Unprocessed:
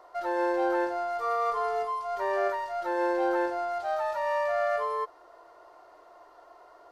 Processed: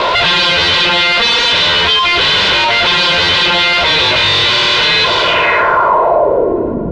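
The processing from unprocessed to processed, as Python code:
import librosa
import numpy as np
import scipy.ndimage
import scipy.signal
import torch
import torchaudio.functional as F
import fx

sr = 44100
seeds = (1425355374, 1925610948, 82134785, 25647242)

p1 = fx.fold_sine(x, sr, drive_db=19, ceiling_db=-16.5)
p2 = scipy.signal.sosfilt(scipy.signal.butter(2, 47.0, 'highpass', fs=sr, output='sos'), p1)
p3 = p2 + 0.78 * np.pad(p2, (int(2.0 * sr / 1000.0), 0))[:len(p2)]
p4 = p3 + fx.echo_split(p3, sr, split_hz=1300.0, low_ms=375, high_ms=563, feedback_pct=52, wet_db=-14, dry=0)
p5 = fx.fuzz(p4, sr, gain_db=35.0, gate_db=-34.0)
p6 = fx.filter_sweep_lowpass(p5, sr, from_hz=3700.0, to_hz=200.0, start_s=5.2, end_s=6.87, q=3.1)
p7 = fx.rider(p6, sr, range_db=10, speed_s=0.5)
p8 = p6 + (p7 * librosa.db_to_amplitude(2.0))
p9 = fx.high_shelf(p8, sr, hz=6800.0, db=-10.0)
p10 = fx.env_flatten(p9, sr, amount_pct=50)
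y = p10 * librosa.db_to_amplitude(-8.0)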